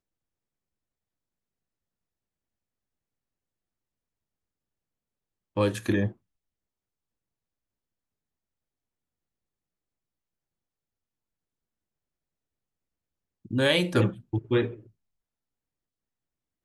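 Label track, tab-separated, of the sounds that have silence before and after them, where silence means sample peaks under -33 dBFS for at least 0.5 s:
5.570000	6.090000	sound
13.510000	14.740000	sound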